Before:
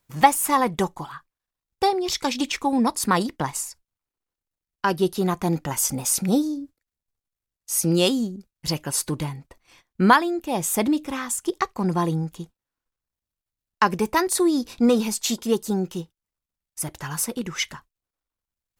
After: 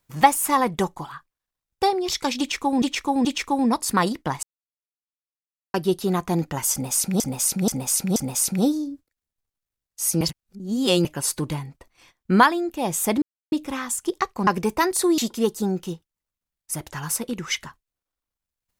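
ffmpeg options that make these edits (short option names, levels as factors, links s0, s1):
-filter_complex "[0:a]asplit=13[s0][s1][s2][s3][s4][s5][s6][s7][s8][s9][s10][s11][s12];[s0]atrim=end=2.822[s13];[s1]atrim=start=2.388:end=2.822[s14];[s2]atrim=start=2.388:end=3.57,asetpts=PTS-STARTPTS,afade=t=out:st=1.178:d=0.004:c=hsin[s15];[s3]atrim=start=3.57:end=4.88,asetpts=PTS-STARTPTS,volume=0[s16];[s4]atrim=start=4.88:end=6.342,asetpts=PTS-STARTPTS,afade=t=in:d=0.004:c=hsin[s17];[s5]atrim=start=5.858:end=6.342[s18];[s6]atrim=start=5.858:end=6.342[s19];[s7]atrim=start=5.858:end=7.912[s20];[s8]atrim=start=7.908:end=8.752,asetpts=PTS-STARTPTS,areverse[s21];[s9]atrim=start=8.748:end=10.92,asetpts=PTS-STARTPTS,afade=t=out:st=2.168:d=0.004:c=hsin,apad=pad_dur=0.3[s22];[s10]atrim=start=10.92:end=11.872,asetpts=PTS-STARTPTS,afade=t=in:d=0.004:c=hsin[s23];[s11]atrim=start=13.828:end=14.542[s24];[s12]atrim=start=15.258[s25];[s13][s14]acrossfade=d=0.004:c1=hsin:c2=hsin[s26];[s15][s16][s17]concat=n=3:v=0:a=1[s27];[s26][s27]acrossfade=d=0.004:c1=hsin:c2=hsin[s28];[s28][s18]acrossfade=d=0.004:c1=hsin:c2=hsin[s29];[s29][s19]acrossfade=d=0.004:c1=hsin:c2=hsin[s30];[s30][s20]acrossfade=d=0.004:c1=hsin:c2=hsin[s31];[s31][s21]acrossfade=d=0.004:c1=hsin:c2=hsin[s32];[s22][s23]concat=n=2:v=0:a=1[s33];[s32][s33]acrossfade=d=0.004:c1=hsin:c2=hsin[s34];[s34][s24]acrossfade=d=0.004:c1=hsin:c2=hsin[s35];[s35][s25]acrossfade=d=0.004:c1=hsin:c2=hsin"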